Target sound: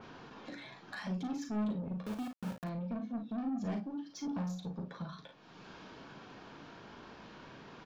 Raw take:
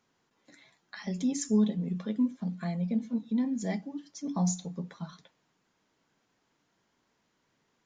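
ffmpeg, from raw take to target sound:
-filter_complex "[0:a]lowpass=f=5000:w=0.5412,lowpass=f=5000:w=1.3066,asettb=1/sr,asplit=3[s0][s1][s2];[s0]atrim=end=2.034[s3];[s1]atrim=start=2.03:end=2.64,asetpts=PTS-STARTPTS,afade=t=in:d=0.004:c=qsin,afade=t=out:st=0.606:d=0.004:c=qsin,aeval=exprs='val(0)*gte(abs(val(0)),0.02)':c=same[s4];[s2]atrim=start=2.636[s5];[s3][s4]acrossfade=d=0.004:c1=hsin:c2=qsin[s6];[s6][s5]acrossfade=d=0.004:c1=qsin:c2=hsin,acompressor=mode=upward:threshold=0.0282:ratio=2.5,asoftclip=type=tanh:threshold=0.02,bandreject=f=2000:w=7.7,asplit=2[s7][s8];[s8]aecho=0:1:38|53:0.447|0.316[s9];[s7][s9]amix=inputs=2:normalize=0,adynamicequalizer=threshold=0.001:dfrequency=2800:dqfactor=0.7:tfrequency=2800:tqfactor=0.7:attack=5:release=100:ratio=0.375:range=3:mode=cutabove:tftype=highshelf,volume=0.891"

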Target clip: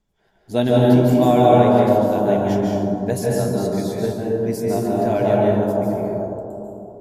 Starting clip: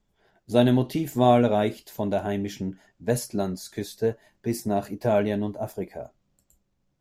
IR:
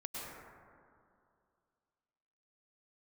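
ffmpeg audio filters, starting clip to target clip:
-filter_complex "[1:a]atrim=start_sample=2205,asetrate=30870,aresample=44100[s0];[0:a][s0]afir=irnorm=-1:irlink=0,volume=1.5"

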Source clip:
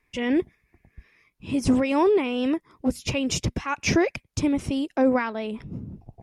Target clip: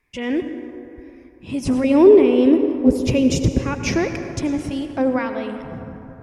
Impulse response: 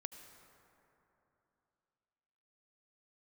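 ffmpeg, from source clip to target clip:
-filter_complex "[0:a]asettb=1/sr,asplit=3[s0][s1][s2];[s0]atrim=end=1.844[s3];[s1]atrim=start=1.84:end=3.88,asetpts=PTS-STARTPTS,afade=t=in:d=0.004:c=qsin,afade=t=out:st=2.036:d=0.004:c=qsin,lowshelf=f=640:t=q:w=1.5:g=8[s4];[s2]atrim=start=3.876[s5];[s3][s4]acrossfade=d=0.004:c1=hsin:c2=qsin[s6];[s6][s5]acrossfade=d=0.004:c1=qsin:c2=hsin[s7];[1:a]atrim=start_sample=2205[s8];[s7][s8]afir=irnorm=-1:irlink=0,volume=1.68"

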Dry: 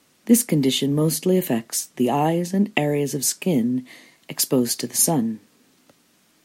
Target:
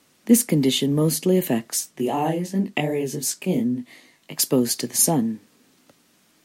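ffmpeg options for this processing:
-filter_complex "[0:a]asplit=3[s0][s1][s2];[s0]afade=t=out:st=1.9:d=0.02[s3];[s1]flanger=delay=16:depth=6:speed=2.7,afade=t=in:st=1.9:d=0.02,afade=t=out:st=4.38:d=0.02[s4];[s2]afade=t=in:st=4.38:d=0.02[s5];[s3][s4][s5]amix=inputs=3:normalize=0"

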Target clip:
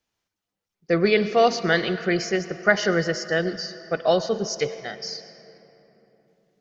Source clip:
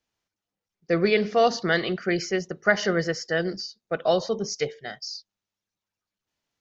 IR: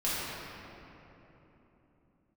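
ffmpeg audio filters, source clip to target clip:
-filter_complex "[0:a]asplit=2[s0][s1];[1:a]atrim=start_sample=2205,lowshelf=f=470:g=-6.5,adelay=105[s2];[s1][s2]afir=irnorm=-1:irlink=0,volume=0.0841[s3];[s0][s3]amix=inputs=2:normalize=0,volume=1.26"

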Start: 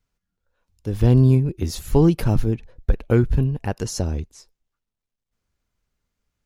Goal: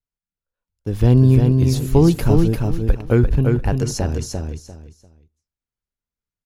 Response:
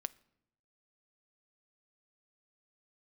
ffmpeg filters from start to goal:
-filter_complex "[0:a]agate=range=0.126:threshold=0.00891:ratio=16:detection=peak,aecho=1:1:346|692|1038:0.631|0.151|0.0363,asplit=2[s0][s1];[1:a]atrim=start_sample=2205,atrim=end_sample=6615,asetrate=33075,aresample=44100[s2];[s1][s2]afir=irnorm=-1:irlink=0,volume=0.891[s3];[s0][s3]amix=inputs=2:normalize=0,volume=0.668"

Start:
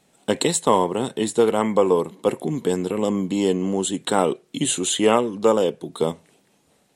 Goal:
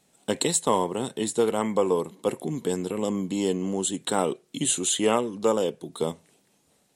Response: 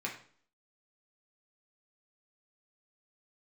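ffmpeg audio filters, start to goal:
-af "bass=f=250:g=1,treble=f=4000:g=5,volume=0.531"

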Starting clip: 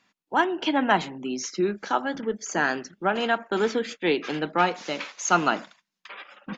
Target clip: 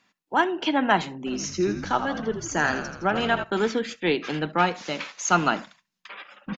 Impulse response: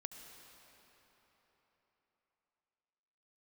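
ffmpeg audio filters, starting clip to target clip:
-filter_complex "[0:a]asubboost=boost=2:cutoff=210,asplit=3[s0][s1][s2];[s0]afade=t=out:st=1.26:d=0.02[s3];[s1]asplit=8[s4][s5][s6][s7][s8][s9][s10][s11];[s5]adelay=82,afreqshift=-55,volume=0.355[s12];[s6]adelay=164,afreqshift=-110,volume=0.207[s13];[s7]adelay=246,afreqshift=-165,volume=0.119[s14];[s8]adelay=328,afreqshift=-220,volume=0.0692[s15];[s9]adelay=410,afreqshift=-275,volume=0.0403[s16];[s10]adelay=492,afreqshift=-330,volume=0.0232[s17];[s11]adelay=574,afreqshift=-385,volume=0.0135[s18];[s4][s12][s13][s14][s15][s16][s17][s18]amix=inputs=8:normalize=0,afade=t=in:st=1.26:d=0.02,afade=t=out:st=3.43:d=0.02[s19];[s2]afade=t=in:st=3.43:d=0.02[s20];[s3][s19][s20]amix=inputs=3:normalize=0[s21];[1:a]atrim=start_sample=2205,atrim=end_sample=3087[s22];[s21][s22]afir=irnorm=-1:irlink=0,volume=1.88"

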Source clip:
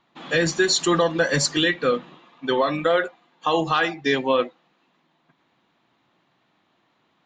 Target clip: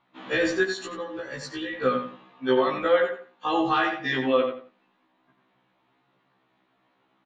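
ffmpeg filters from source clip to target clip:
-filter_complex "[0:a]bass=f=250:g=-1,treble=f=4000:g=-10,asettb=1/sr,asplit=3[s0][s1][s2];[s0]atrim=end=0.634[s3];[s1]atrim=start=0.63:end=1.73,asetpts=PTS-STARTPTS,afade=t=in:d=0.004:c=qsin,afade=t=out:st=1.096:d=0.004:c=qsin,acompressor=threshold=0.0355:ratio=10[s4];[s2]atrim=start=1.726[s5];[s3][s4]acrossfade=d=0.004:c1=hsin:c2=qsin[s6];[s6][s5]acrossfade=d=0.004:c1=qsin:c2=hsin,asplit=2[s7][s8];[s8]adelay=89,lowpass=f=3700:p=1,volume=0.473,asplit=2[s9][s10];[s10]adelay=89,lowpass=f=3700:p=1,volume=0.26,asplit=2[s11][s12];[s12]adelay=89,lowpass=f=3700:p=1,volume=0.26[s13];[s9][s11][s13]amix=inputs=3:normalize=0[s14];[s7][s14]amix=inputs=2:normalize=0,afftfilt=real='re*1.73*eq(mod(b,3),0)':imag='im*1.73*eq(mod(b,3),0)':win_size=2048:overlap=0.75"

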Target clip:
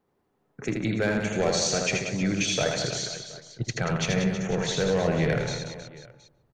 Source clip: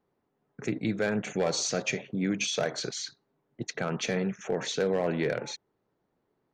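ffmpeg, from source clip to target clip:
-filter_complex "[0:a]asplit=2[s0][s1];[s1]adelay=146,lowpass=f=1100:p=1,volume=0.188,asplit=2[s2][s3];[s3]adelay=146,lowpass=f=1100:p=1,volume=0.52,asplit=2[s4][s5];[s5]adelay=146,lowpass=f=1100:p=1,volume=0.52,asplit=2[s6][s7];[s7]adelay=146,lowpass=f=1100:p=1,volume=0.52,asplit=2[s8][s9];[s9]adelay=146,lowpass=f=1100:p=1,volume=0.52[s10];[s2][s4][s6][s8][s10]amix=inputs=5:normalize=0[s11];[s0][s11]amix=inputs=2:normalize=0,asubboost=boost=10:cutoff=90,asplit=2[s12][s13];[s13]aecho=0:1:80|184|319.2|495|723.4:0.631|0.398|0.251|0.158|0.1[s14];[s12][s14]amix=inputs=2:normalize=0,volume=1.33"

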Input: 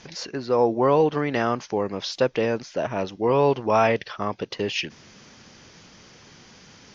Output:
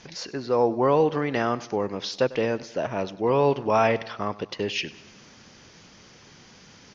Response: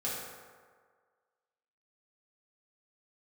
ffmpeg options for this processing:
-af "aecho=1:1:98|196|294|392:0.112|0.0606|0.0327|0.0177,volume=0.841"

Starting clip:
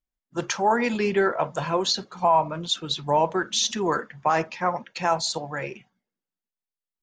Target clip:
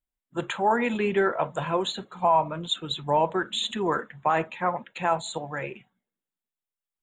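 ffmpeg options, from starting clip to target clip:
-af "asuperstop=centerf=5300:order=12:qfactor=1.8,volume=0.841"

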